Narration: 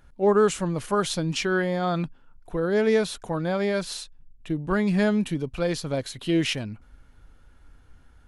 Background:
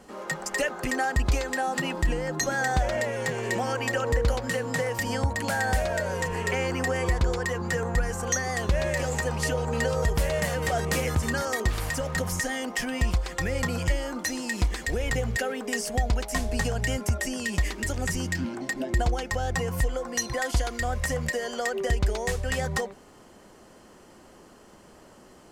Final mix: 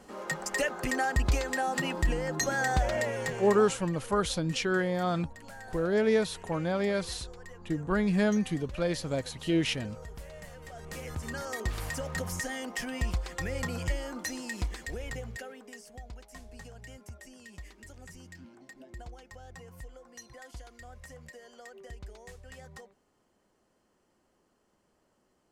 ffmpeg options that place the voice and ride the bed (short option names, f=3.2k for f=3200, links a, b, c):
-filter_complex "[0:a]adelay=3200,volume=-4dB[a];[1:a]volume=11.5dB,afade=t=out:st=3.09:d=0.76:silence=0.133352,afade=t=in:st=10.74:d=1.08:silence=0.199526,afade=t=out:st=14.25:d=1.58:silence=0.188365[b];[a][b]amix=inputs=2:normalize=0"